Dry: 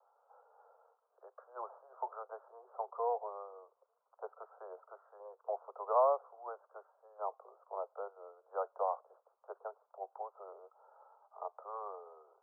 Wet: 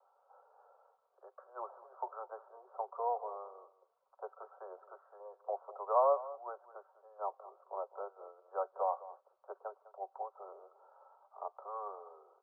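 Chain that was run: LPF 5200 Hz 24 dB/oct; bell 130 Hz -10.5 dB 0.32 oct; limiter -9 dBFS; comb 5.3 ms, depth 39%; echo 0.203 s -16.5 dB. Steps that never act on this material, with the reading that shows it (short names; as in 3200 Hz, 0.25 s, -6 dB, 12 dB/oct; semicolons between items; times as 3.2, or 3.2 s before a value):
LPF 5200 Hz: input band ends at 1400 Hz; bell 130 Hz: input band starts at 360 Hz; limiter -9 dBFS: input peak -19.0 dBFS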